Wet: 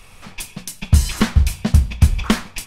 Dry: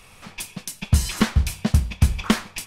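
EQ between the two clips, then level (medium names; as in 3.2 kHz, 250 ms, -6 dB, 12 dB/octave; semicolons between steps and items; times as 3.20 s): bass shelf 67 Hz +9.5 dB; hum notches 60/120/180/240 Hz; +2.0 dB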